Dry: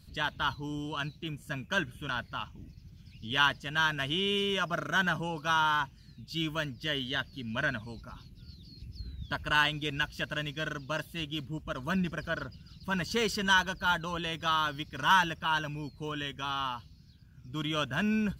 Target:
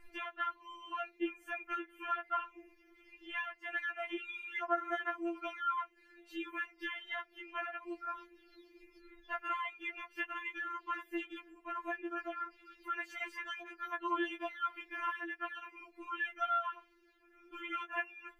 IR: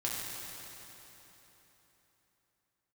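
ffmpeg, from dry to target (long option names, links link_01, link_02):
-af "acompressor=threshold=-39dB:ratio=12,highshelf=frequency=3000:width_type=q:width=3:gain=-13,afftfilt=real='re*4*eq(mod(b,16),0)':imag='im*4*eq(mod(b,16),0)':win_size=2048:overlap=0.75,volume=6.5dB"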